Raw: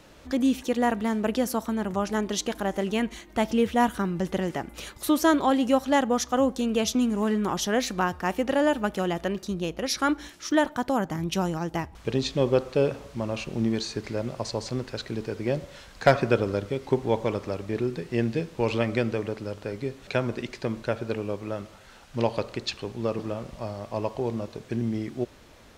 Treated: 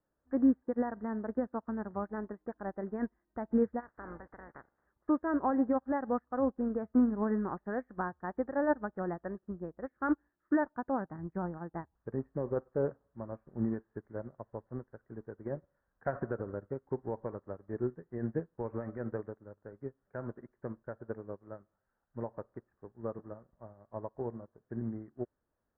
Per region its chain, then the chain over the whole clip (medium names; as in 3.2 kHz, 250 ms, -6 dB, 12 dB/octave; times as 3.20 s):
3.79–4.84 s: spectral peaks clipped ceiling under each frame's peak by 23 dB + compression, threshold -24 dBFS
whole clip: peak limiter -16.5 dBFS; steep low-pass 1.8 kHz 72 dB/octave; upward expansion 2.5:1, over -42 dBFS